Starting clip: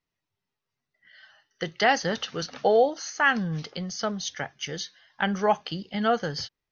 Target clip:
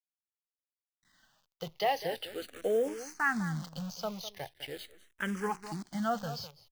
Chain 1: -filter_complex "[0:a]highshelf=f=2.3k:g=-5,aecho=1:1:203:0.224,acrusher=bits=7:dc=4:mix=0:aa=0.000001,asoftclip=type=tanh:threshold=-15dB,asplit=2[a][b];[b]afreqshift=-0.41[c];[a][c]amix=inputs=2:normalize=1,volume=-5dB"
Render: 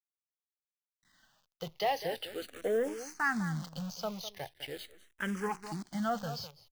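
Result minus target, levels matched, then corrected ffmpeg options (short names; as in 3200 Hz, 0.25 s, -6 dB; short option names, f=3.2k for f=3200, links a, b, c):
soft clip: distortion +18 dB
-filter_complex "[0:a]highshelf=f=2.3k:g=-5,aecho=1:1:203:0.224,acrusher=bits=7:dc=4:mix=0:aa=0.000001,asoftclip=type=tanh:threshold=-4.5dB,asplit=2[a][b];[b]afreqshift=-0.41[c];[a][c]amix=inputs=2:normalize=1,volume=-5dB"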